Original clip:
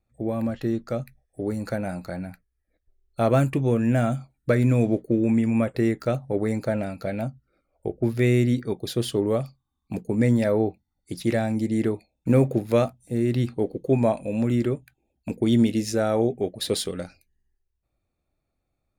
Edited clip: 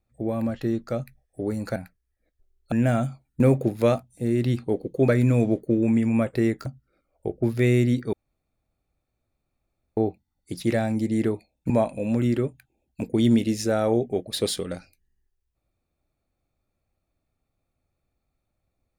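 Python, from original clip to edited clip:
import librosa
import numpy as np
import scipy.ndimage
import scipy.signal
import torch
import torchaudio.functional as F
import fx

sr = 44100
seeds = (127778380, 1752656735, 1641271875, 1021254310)

y = fx.edit(x, sr, fx.cut(start_s=1.76, length_s=0.48),
    fx.cut(start_s=3.2, length_s=0.61),
    fx.cut(start_s=6.07, length_s=1.19),
    fx.room_tone_fill(start_s=8.73, length_s=1.84),
    fx.move(start_s=12.3, length_s=1.68, to_s=4.49), tone=tone)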